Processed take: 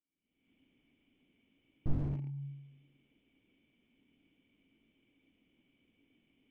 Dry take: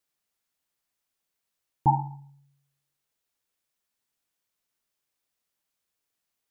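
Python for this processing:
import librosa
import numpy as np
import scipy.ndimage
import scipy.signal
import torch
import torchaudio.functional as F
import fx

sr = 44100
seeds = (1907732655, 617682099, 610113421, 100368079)

y = fx.recorder_agc(x, sr, target_db=-18.5, rise_db_per_s=60.0, max_gain_db=30)
y = fx.low_shelf(y, sr, hz=260.0, db=-3.0)
y = fx.hum_notches(y, sr, base_hz=50, count=7)
y = fx.leveller(y, sr, passes=3)
y = fx.formant_cascade(y, sr, vowel='i')
y = fx.air_absorb(y, sr, metres=460.0)
y = fx.slew_limit(y, sr, full_power_hz=0.97)
y = F.gain(torch.from_numpy(y), 11.5).numpy()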